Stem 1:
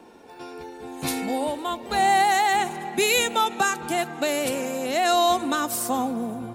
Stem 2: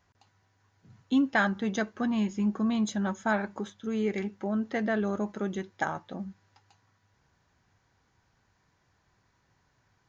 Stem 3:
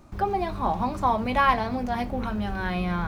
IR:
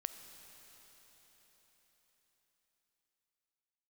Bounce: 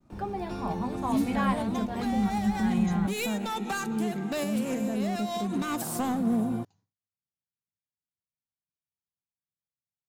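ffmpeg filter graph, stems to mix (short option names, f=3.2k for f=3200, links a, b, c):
-filter_complex "[0:a]acompressor=threshold=-22dB:ratio=6,volume=25.5dB,asoftclip=hard,volume=-25.5dB,adelay=100,volume=-3dB,asplit=2[a][b];[b]volume=-14.5dB[c];[1:a]equalizer=f=1.7k:t=o:w=1.8:g=-11,volume=-7.5dB,asplit=2[d][e];[2:a]volume=-10dB[f];[e]apad=whole_len=293202[g];[a][g]sidechaincompress=threshold=-43dB:ratio=8:attack=11:release=179[h];[3:a]atrim=start_sample=2205[i];[c][i]afir=irnorm=-1:irlink=0[j];[h][d][f][j]amix=inputs=4:normalize=0,equalizer=f=180:w=1.1:g=10,agate=range=-33dB:threshold=-53dB:ratio=3:detection=peak"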